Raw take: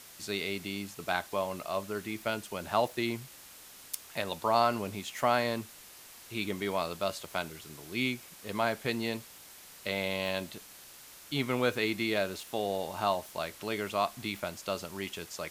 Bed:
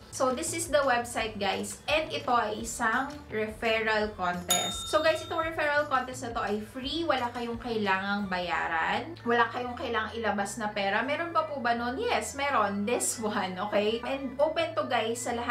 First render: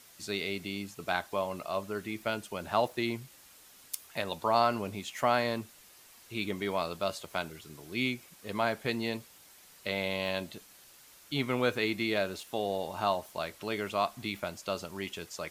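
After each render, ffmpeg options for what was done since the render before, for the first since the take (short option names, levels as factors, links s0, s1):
-af "afftdn=nr=6:nf=-52"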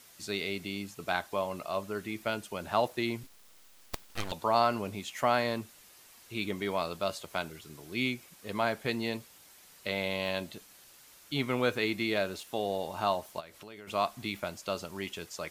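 -filter_complex "[0:a]asettb=1/sr,asplit=3[s0][s1][s2];[s0]atrim=end=3.234[s3];[s1]atrim=start=3.23:end=4.32,asetpts=PTS-STARTPTS,afade=t=in:d=0.004:c=qsin,afade=t=out:st=1.086:d=0.004:c=qsin,aeval=exprs='abs(val(0))':c=same[s4];[s2]atrim=start=4.316[s5];[s3][s4]acrossfade=d=0.004:c1=hsin:c2=qsin[s6];[s6][s5]acrossfade=d=0.004:c1=qsin:c2=hsin,asplit=3[s7][s8][s9];[s7]afade=t=out:st=13.39:d=0.02[s10];[s8]acompressor=threshold=0.00501:ratio=4:attack=3.2:release=140:knee=1:detection=peak,afade=t=in:st=13.39:d=0.02,afade=t=out:st=13.87:d=0.02[s11];[s9]afade=t=in:st=13.87:d=0.02[s12];[s10][s11][s12]amix=inputs=3:normalize=0"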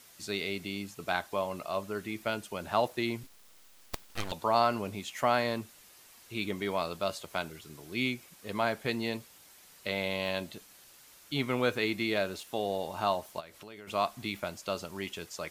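-af anull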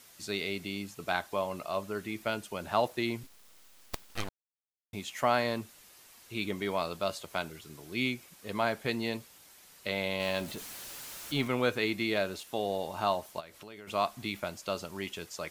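-filter_complex "[0:a]asettb=1/sr,asplit=3[s0][s1][s2];[s0]atrim=end=10.204[s3];[s1]atrim=start=10.2:end=11.48,asetpts=PTS-STARTPTS,afade=t=in:d=0.004:c=qsin,afade=t=out:st=1.276:d=0.004:c=qsin,aeval=exprs='val(0)+0.5*0.00944*sgn(val(0))':c=same[s4];[s2]atrim=start=11.476[s5];[s3][s4]acrossfade=d=0.004:c1=hsin:c2=qsin[s6];[s6][s5]acrossfade=d=0.004:c1=qsin:c2=hsin,asplit=3[s7][s8][s9];[s7]atrim=end=4.29,asetpts=PTS-STARTPTS,afade=t=out:st=4.286:d=0.004:c=hsin[s10];[s8]atrim=start=4.29:end=4.93,asetpts=PTS-STARTPTS,volume=0[s11];[s9]atrim=start=4.93,asetpts=PTS-STARTPTS,afade=t=in:d=0.004:c=hsin[s12];[s10][s11][s12]concat=n=3:v=0:a=1"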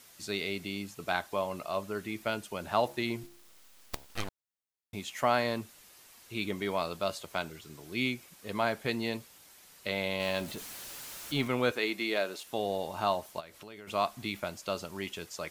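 -filter_complex "[0:a]asettb=1/sr,asplit=3[s0][s1][s2];[s0]atrim=end=2.844[s3];[s1]atrim=start=2.84:end=4.06,asetpts=PTS-STARTPTS,afade=t=in:d=0.004:c=qsin,afade=t=out:st=1.216:d=0.004:c=qsin,bandreject=f=69.51:t=h:w=4,bandreject=f=139.02:t=h:w=4,bandreject=f=208.53:t=h:w=4,bandreject=f=278.04:t=h:w=4,bandreject=f=347.55:t=h:w=4,bandreject=f=417.06:t=h:w=4,bandreject=f=486.57:t=h:w=4,bandreject=f=556.08:t=h:w=4,bandreject=f=625.59:t=h:w=4,bandreject=f=695.1:t=h:w=4,bandreject=f=764.61:t=h:w=4,bandreject=f=834.12:t=h:w=4,bandreject=f=903.63:t=h:w=4,bandreject=f=973.14:t=h:w=4[s4];[s2]atrim=start=4.056[s5];[s3][s4]acrossfade=d=0.004:c1=hsin:c2=qsin[s6];[s6][s5]acrossfade=d=0.004:c1=qsin:c2=hsin,asettb=1/sr,asplit=3[s7][s8][s9];[s7]atrim=end=7.324[s10];[s8]atrim=start=7.32:end=7.85,asetpts=PTS-STARTPTS,afade=t=in:d=0.004:c=qsin,afade=t=out:st=0.526:d=0.004:c=qsin,equalizer=f=11000:w=7.1:g=-10.5[s11];[s9]atrim=start=7.846[s12];[s10][s11]acrossfade=d=0.004:c1=hsin:c2=qsin[s13];[s13][s12]acrossfade=d=0.004:c1=qsin:c2=hsin,asettb=1/sr,asplit=3[s14][s15][s16];[s14]atrim=end=11.714[s17];[s15]atrim=start=11.71:end=12.45,asetpts=PTS-STARTPTS,afade=t=in:d=0.004:c=qsin,afade=t=out:st=0.736:d=0.004:c=qsin,highpass=290[s18];[s16]atrim=start=12.446[s19];[s17][s18]acrossfade=d=0.004:c1=hsin:c2=qsin[s20];[s20][s19]acrossfade=d=0.004:c1=qsin:c2=hsin"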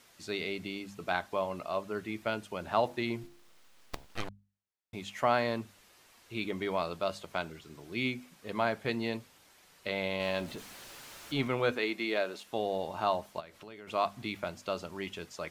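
-af "lowpass=f=3600:p=1,bandreject=f=50:t=h:w=6,bandreject=f=100:t=h:w=6,bandreject=f=150:t=h:w=6,bandreject=f=200:t=h:w=6,bandreject=f=250:t=h:w=6"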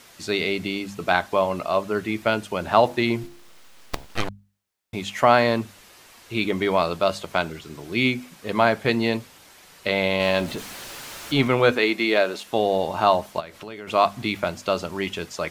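-af "volume=3.76,alimiter=limit=0.708:level=0:latency=1"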